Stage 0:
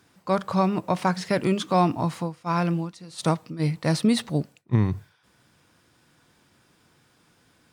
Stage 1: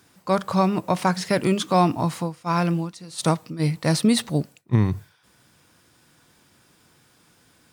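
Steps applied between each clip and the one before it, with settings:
high-shelf EQ 6,700 Hz +7.5 dB
level +2 dB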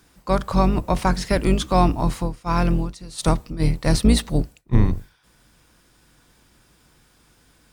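sub-octave generator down 2 octaves, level +2 dB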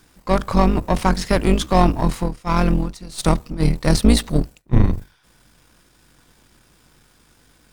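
gain on one half-wave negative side −7 dB
level +4.5 dB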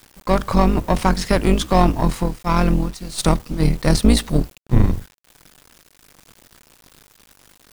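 in parallel at −0.5 dB: downward compressor 8 to 1, threshold −24 dBFS, peak gain reduction 16.5 dB
on the sum: bit reduction 7 bits
level −1.5 dB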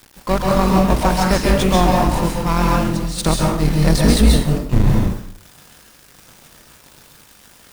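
in parallel at −10 dB: wrap-around overflow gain 18.5 dB
on the sum: dense smooth reverb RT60 0.6 s, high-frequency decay 0.75×, pre-delay 120 ms, DRR −1.5 dB
level −1 dB

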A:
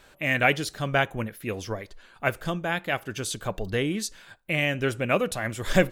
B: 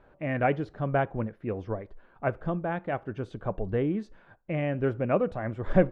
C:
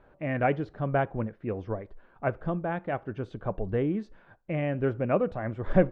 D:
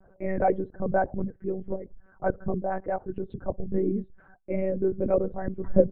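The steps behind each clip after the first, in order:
low-pass filter 1,000 Hz 12 dB per octave
high-frequency loss of the air 62 metres
spectral envelope exaggerated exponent 2; one-pitch LPC vocoder at 8 kHz 190 Hz; level +2 dB

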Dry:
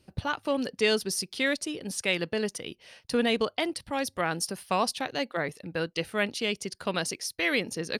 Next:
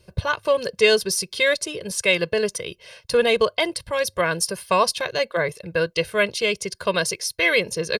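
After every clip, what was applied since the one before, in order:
comb filter 1.9 ms, depth 87%
level +5 dB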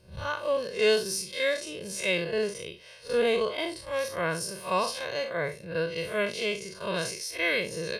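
spectrum smeared in time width 109 ms
level −3.5 dB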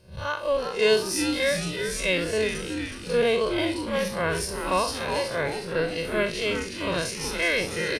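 echo with shifted repeats 369 ms, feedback 53%, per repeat −130 Hz, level −6.5 dB
level +2.5 dB

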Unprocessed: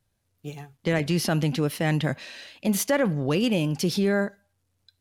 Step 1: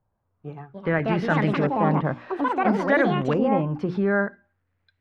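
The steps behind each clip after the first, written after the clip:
mains-hum notches 60/120/180/240/300/360 Hz
delay with pitch and tempo change per echo 408 ms, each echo +5 semitones, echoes 2
auto-filter low-pass saw up 0.6 Hz 930–2,100 Hz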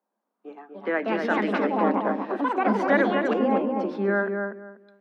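Butterworth high-pass 200 Hz 96 dB per octave
on a send: feedback echo with a low-pass in the loop 243 ms, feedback 23%, low-pass 1,700 Hz, level −4 dB
on the sum: level −1.5 dB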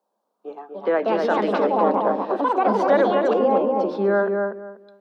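octave-band graphic EQ 125/250/500/1,000/2,000/4,000 Hz +5/−6/+6/+4/−9/+5 dB
in parallel at −1.5 dB: brickwall limiter −17 dBFS, peak gain reduction 10 dB
on the sum: level −2 dB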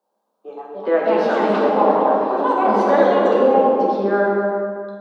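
dense smooth reverb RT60 1.7 s, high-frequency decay 0.75×, DRR −2.5 dB
level −1 dB

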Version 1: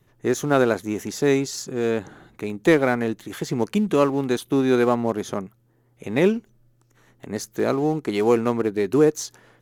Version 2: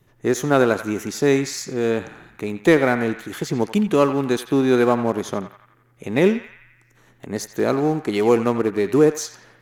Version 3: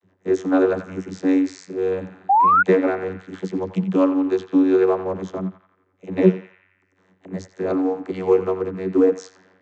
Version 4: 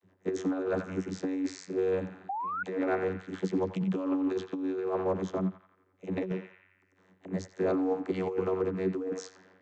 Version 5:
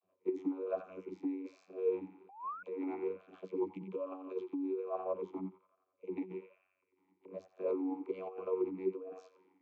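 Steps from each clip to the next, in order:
feedback echo with a band-pass in the loop 87 ms, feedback 65%, band-pass 1,800 Hz, level −9.5 dB; level +2 dB
channel vocoder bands 32, saw 93.7 Hz; sound drawn into the spectrogram rise, 0:02.29–0:02.63, 750–1,500 Hz −14 dBFS
compressor whose output falls as the input rises −22 dBFS, ratio −1; level −7.5 dB
formant filter swept between two vowels a-u 1.2 Hz; level +1.5 dB

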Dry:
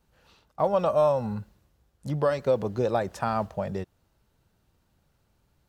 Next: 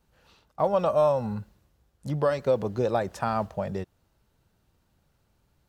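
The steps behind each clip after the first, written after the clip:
no processing that can be heard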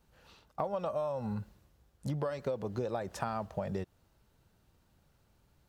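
downward compressor 10 to 1, threshold −31 dBFS, peak gain reduction 14 dB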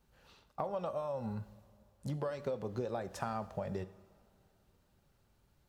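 coupled-rooms reverb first 0.63 s, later 2.8 s, from −15 dB, DRR 11.5 dB
level −3 dB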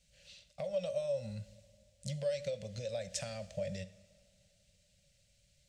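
drawn EQ curve 190 Hz 0 dB, 350 Hz −30 dB, 570 Hz +7 dB, 850 Hz −19 dB, 1,200 Hz −18 dB, 2,100 Hz +7 dB, 8,100 Hz +14 dB, 13,000 Hz −6 dB
level −1 dB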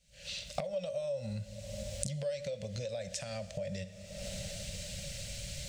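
camcorder AGC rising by 58 dB per second
level −1.5 dB

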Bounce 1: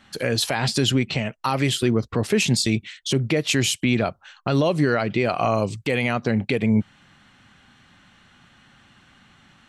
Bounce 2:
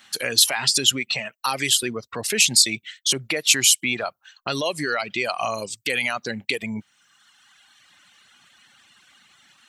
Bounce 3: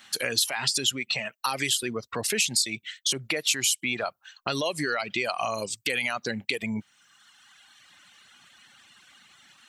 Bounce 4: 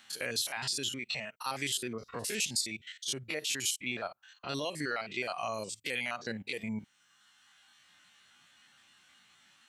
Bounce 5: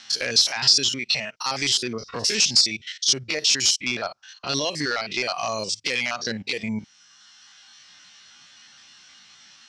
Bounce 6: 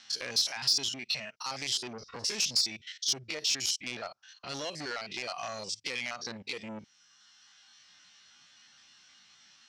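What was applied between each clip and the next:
reverb reduction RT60 1.5 s; spectral tilt +4 dB per octave; level −1 dB
downward compressor 2.5 to 1, threshold −25 dBFS, peak gain reduction 9.5 dB
spectrum averaged block by block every 50 ms; level −5.5 dB
hard clipping −27.5 dBFS, distortion −16 dB; low-pass with resonance 5,400 Hz, resonance Q 5.2; level +8.5 dB
saturating transformer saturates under 3,800 Hz; level −9 dB

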